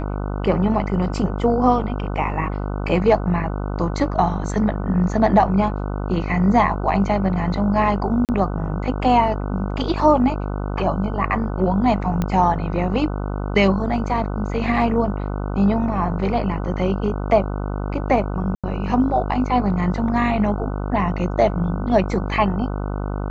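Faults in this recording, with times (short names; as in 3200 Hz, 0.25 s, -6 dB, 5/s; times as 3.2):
buzz 50 Hz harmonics 30 -25 dBFS
8.25–8.29 gap 38 ms
12.22 pop -10 dBFS
18.55–18.64 gap 86 ms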